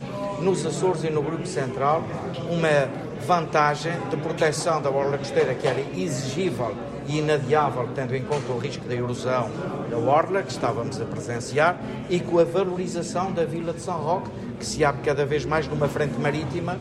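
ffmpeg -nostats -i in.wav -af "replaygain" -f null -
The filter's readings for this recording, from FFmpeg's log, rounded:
track_gain = +3.7 dB
track_peak = 0.294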